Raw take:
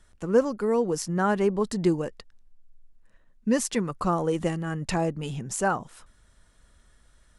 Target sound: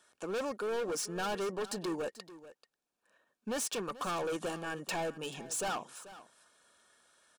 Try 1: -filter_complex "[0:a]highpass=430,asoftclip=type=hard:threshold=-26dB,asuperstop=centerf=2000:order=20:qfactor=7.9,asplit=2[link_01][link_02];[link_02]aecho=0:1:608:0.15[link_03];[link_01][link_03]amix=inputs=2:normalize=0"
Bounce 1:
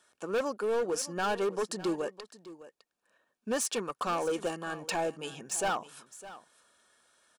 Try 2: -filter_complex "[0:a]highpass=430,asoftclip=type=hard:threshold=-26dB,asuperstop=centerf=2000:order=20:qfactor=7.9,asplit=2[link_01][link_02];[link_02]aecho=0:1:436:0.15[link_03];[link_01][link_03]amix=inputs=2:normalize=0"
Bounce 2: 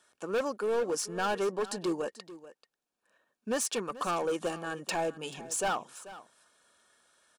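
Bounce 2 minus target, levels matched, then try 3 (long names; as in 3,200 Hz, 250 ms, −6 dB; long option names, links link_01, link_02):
hard clipping: distortion −4 dB
-filter_complex "[0:a]highpass=430,asoftclip=type=hard:threshold=-32.5dB,asuperstop=centerf=2000:order=20:qfactor=7.9,asplit=2[link_01][link_02];[link_02]aecho=0:1:436:0.15[link_03];[link_01][link_03]amix=inputs=2:normalize=0"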